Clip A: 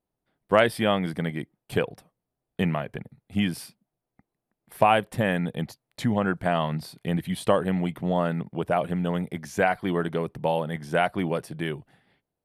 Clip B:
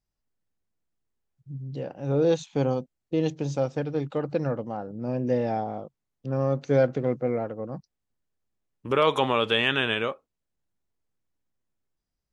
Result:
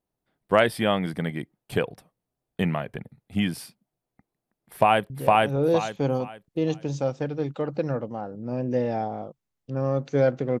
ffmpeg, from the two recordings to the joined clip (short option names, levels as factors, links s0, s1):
-filter_complex "[0:a]apad=whole_dur=10.6,atrim=end=10.6,atrim=end=5.102[s0];[1:a]atrim=start=1.658:end=7.16[s1];[s0][s1]acrossfade=d=0.004:c1=hsin:c2=hsin,asplit=2[s2][s3];[s3]afade=t=in:st=4.68:d=0.01,afade=t=out:st=5.1:d=0.01,aecho=0:1:460|920|1380|1840:1|0.3|0.09|0.027[s4];[s2][s4]amix=inputs=2:normalize=0"